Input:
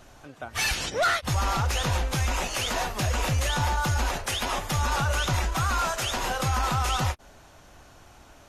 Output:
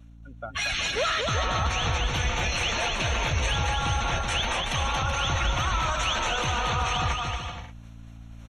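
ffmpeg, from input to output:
-filter_complex "[0:a]equalizer=f=3300:t=o:w=2.1:g=7.5,afftdn=nr=25:nf=-33,areverse,acompressor=mode=upward:threshold=0.00891:ratio=2.5,areverse,alimiter=limit=0.1:level=0:latency=1:release=12,aeval=exprs='val(0)+0.00447*(sin(2*PI*60*n/s)+sin(2*PI*2*60*n/s)/2+sin(2*PI*3*60*n/s)/3+sin(2*PI*4*60*n/s)/4+sin(2*PI*5*60*n/s)/5)':c=same,asetrate=41625,aresample=44100,atempo=1.05946,asuperstop=centerf=4900:order=4:qfactor=4.5,asplit=2[s0][s1];[s1]aecho=0:1:230|379.5|476.7|539.8|580.9:0.631|0.398|0.251|0.158|0.1[s2];[s0][s2]amix=inputs=2:normalize=0"

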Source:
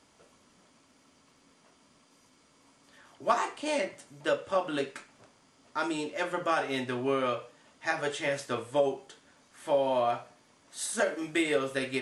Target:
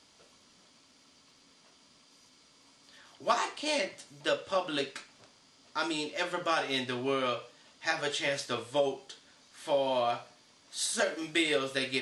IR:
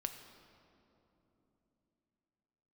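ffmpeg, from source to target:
-af "equalizer=f=4300:w=0.95:g=10.5,volume=0.75"

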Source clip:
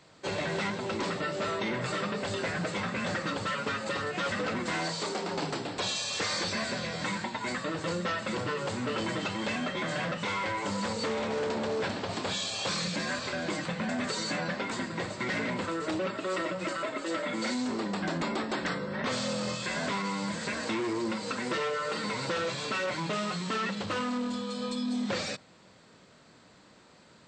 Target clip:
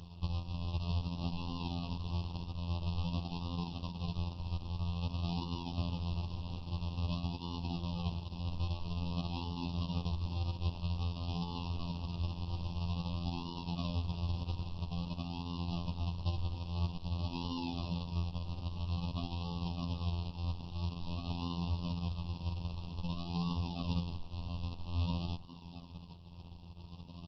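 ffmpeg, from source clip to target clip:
-filter_complex "[0:a]aresample=11025,acrusher=samples=34:mix=1:aa=0.000001:lfo=1:lforange=34:lforate=0.5,aresample=44100,acompressor=threshold=0.00794:ratio=16,asplit=2[s0][s1];[s1]adelay=71,lowpass=f=980:p=1,volume=0.126,asplit=2[s2][s3];[s3]adelay=71,lowpass=f=980:p=1,volume=0.23[s4];[s0][s2][s4]amix=inputs=3:normalize=0,alimiter=level_in=4.22:limit=0.0631:level=0:latency=1:release=256,volume=0.237,afftfilt=real='re*(1-between(b*sr/4096,1200,2500))':imag='im*(1-between(b*sr/4096,1200,2500))':win_size=4096:overlap=0.75,equalizer=f=390:t=o:w=1.1:g=-14.5,afftfilt=real='hypot(re,im)*cos(PI*b)':imag='0':win_size=2048:overlap=0.75,volume=6.68" -ar 48000 -c:a libopus -b:a 12k

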